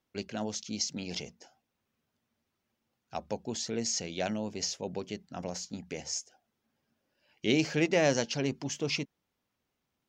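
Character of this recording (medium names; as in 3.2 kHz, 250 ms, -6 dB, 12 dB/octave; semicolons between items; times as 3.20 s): noise floor -83 dBFS; spectral tilt -3.5 dB/octave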